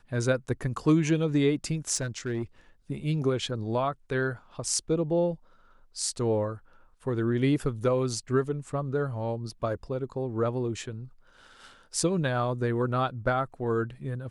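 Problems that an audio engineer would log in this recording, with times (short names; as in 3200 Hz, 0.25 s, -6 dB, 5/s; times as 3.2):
1.95–2.42 clipped -25.5 dBFS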